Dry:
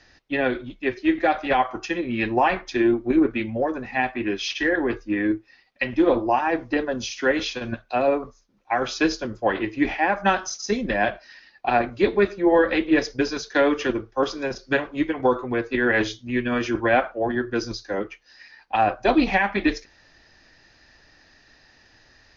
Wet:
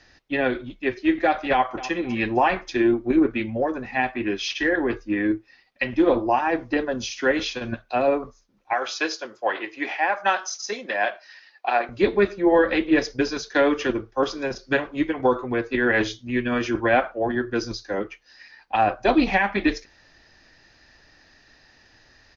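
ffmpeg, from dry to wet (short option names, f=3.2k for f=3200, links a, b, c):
-filter_complex "[0:a]asplit=2[a][b];[b]afade=t=in:st=1.51:d=0.01,afade=t=out:st=1.96:d=0.01,aecho=0:1:260|520|780:0.16788|0.0587581|0.0205653[c];[a][c]amix=inputs=2:normalize=0,asettb=1/sr,asplit=3[d][e][f];[d]atrim=end=8.734[g];[e]atrim=start=8.73:end=11.89,asetpts=PTS-STARTPTS,afade=t=in:d=0.004:c=qsin,afade=t=out:st=3.156:d=0.004:c=qsin,highpass=540[h];[f]atrim=start=11.886[i];[g][h]acrossfade=d=0.004:c1=hsin:c2=qsin[j];[j][i]acrossfade=d=0.004:c1=qsin:c2=hsin"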